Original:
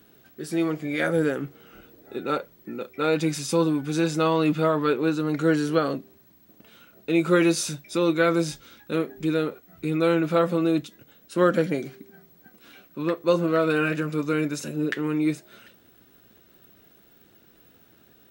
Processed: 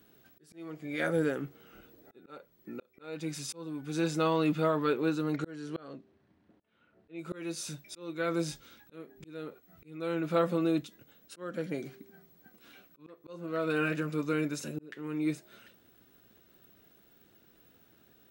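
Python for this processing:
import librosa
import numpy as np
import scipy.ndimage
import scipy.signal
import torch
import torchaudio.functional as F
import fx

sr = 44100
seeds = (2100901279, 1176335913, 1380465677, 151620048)

y = fx.auto_swell(x, sr, attack_ms=546.0)
y = fx.env_lowpass(y, sr, base_hz=2200.0, full_db=-27.0, at=(5.36, 7.19))
y = y * librosa.db_to_amplitude(-6.0)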